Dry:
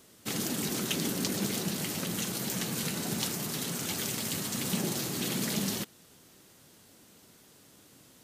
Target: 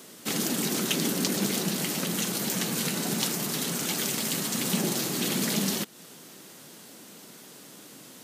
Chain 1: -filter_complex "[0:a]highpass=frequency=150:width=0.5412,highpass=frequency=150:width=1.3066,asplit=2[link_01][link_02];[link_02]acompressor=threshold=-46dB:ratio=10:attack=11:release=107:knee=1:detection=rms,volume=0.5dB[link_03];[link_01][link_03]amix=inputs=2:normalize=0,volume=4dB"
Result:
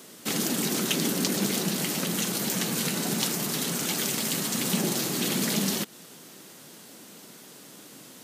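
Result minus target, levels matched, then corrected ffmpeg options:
downward compressor: peak gain reduction −7.5 dB
-filter_complex "[0:a]highpass=frequency=150:width=0.5412,highpass=frequency=150:width=1.3066,asplit=2[link_01][link_02];[link_02]acompressor=threshold=-54.5dB:ratio=10:attack=11:release=107:knee=1:detection=rms,volume=0.5dB[link_03];[link_01][link_03]amix=inputs=2:normalize=0,volume=4dB"

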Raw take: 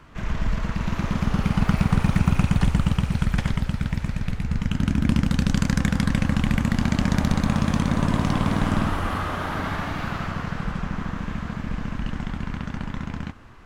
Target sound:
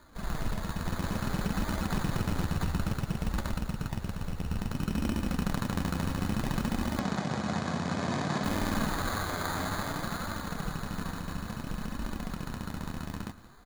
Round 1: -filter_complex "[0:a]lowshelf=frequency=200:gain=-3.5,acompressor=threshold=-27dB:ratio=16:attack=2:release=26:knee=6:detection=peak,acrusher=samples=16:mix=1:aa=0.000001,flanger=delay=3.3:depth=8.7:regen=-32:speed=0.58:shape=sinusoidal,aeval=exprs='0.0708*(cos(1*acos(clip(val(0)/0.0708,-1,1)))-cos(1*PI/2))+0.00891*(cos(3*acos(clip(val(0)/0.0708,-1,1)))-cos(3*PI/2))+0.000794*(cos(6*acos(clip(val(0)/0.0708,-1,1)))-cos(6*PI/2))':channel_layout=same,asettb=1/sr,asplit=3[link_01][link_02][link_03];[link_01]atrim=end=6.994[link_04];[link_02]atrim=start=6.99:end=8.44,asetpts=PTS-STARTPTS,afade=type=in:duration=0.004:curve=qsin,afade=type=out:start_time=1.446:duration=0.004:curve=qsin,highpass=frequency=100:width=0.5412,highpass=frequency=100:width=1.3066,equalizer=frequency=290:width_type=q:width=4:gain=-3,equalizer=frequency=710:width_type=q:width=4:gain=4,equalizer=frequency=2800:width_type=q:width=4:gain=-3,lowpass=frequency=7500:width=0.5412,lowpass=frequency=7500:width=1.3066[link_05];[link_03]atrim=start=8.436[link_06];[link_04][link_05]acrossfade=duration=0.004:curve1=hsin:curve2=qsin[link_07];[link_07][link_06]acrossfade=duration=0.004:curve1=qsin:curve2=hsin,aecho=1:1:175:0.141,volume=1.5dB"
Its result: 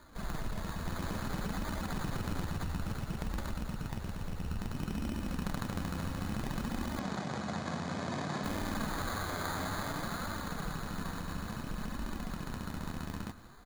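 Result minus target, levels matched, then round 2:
downward compressor: peak gain reduction +5.5 dB
-filter_complex "[0:a]lowshelf=frequency=200:gain=-3.5,acompressor=threshold=-21dB:ratio=16:attack=2:release=26:knee=6:detection=peak,acrusher=samples=16:mix=1:aa=0.000001,flanger=delay=3.3:depth=8.7:regen=-32:speed=0.58:shape=sinusoidal,aeval=exprs='0.0708*(cos(1*acos(clip(val(0)/0.0708,-1,1)))-cos(1*PI/2))+0.00891*(cos(3*acos(clip(val(0)/0.0708,-1,1)))-cos(3*PI/2))+0.000794*(cos(6*acos(clip(val(0)/0.0708,-1,1)))-cos(6*PI/2))':channel_layout=same,asettb=1/sr,asplit=3[link_01][link_02][link_03];[link_01]atrim=end=6.994[link_04];[link_02]atrim=start=6.99:end=8.44,asetpts=PTS-STARTPTS,afade=type=in:duration=0.004:curve=qsin,afade=type=out:start_time=1.446:duration=0.004:curve=qsin,highpass=frequency=100:width=0.5412,highpass=frequency=100:width=1.3066,equalizer=frequency=290:width_type=q:width=4:gain=-3,equalizer=frequency=710:width_type=q:width=4:gain=4,equalizer=frequency=2800:width_type=q:width=4:gain=-3,lowpass=frequency=7500:width=0.5412,lowpass=frequency=7500:width=1.3066[link_05];[link_03]atrim=start=8.436[link_06];[link_04][link_05]acrossfade=duration=0.004:curve1=hsin:curve2=qsin[link_07];[link_07][link_06]acrossfade=duration=0.004:curve1=qsin:curve2=hsin,aecho=1:1:175:0.141,volume=1.5dB"

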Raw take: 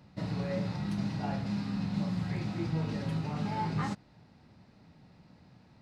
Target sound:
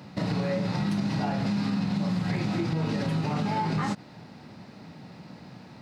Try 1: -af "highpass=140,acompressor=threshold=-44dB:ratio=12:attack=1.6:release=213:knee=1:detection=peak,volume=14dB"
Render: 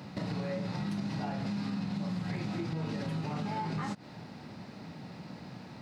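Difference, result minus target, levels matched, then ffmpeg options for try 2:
downward compressor: peak gain reduction +7.5 dB
-af "highpass=140,acompressor=threshold=-36dB:ratio=12:attack=1.6:release=213:knee=1:detection=peak,volume=14dB"

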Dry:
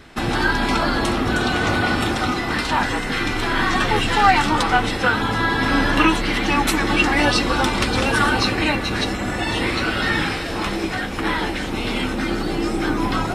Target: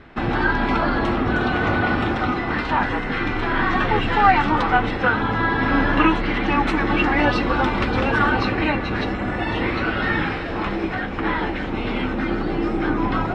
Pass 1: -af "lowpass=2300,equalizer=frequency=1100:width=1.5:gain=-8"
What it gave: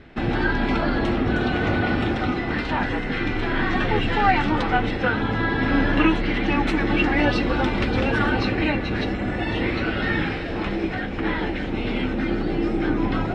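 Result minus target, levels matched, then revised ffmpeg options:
1,000 Hz band −3.0 dB
-af "lowpass=2300"

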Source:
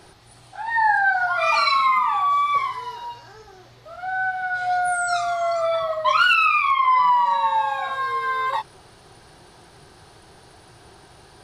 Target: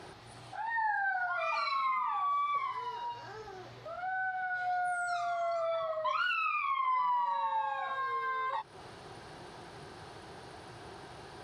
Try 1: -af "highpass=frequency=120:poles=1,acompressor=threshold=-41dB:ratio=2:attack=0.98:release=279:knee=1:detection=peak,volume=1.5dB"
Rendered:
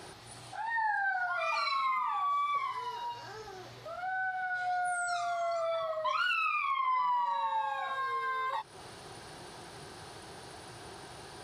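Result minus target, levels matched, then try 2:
4,000 Hz band +2.5 dB
-af "highpass=frequency=120:poles=1,acompressor=threshold=-41dB:ratio=2:attack=0.98:release=279:knee=1:detection=peak,lowpass=frequency=3200:poles=1,volume=1.5dB"

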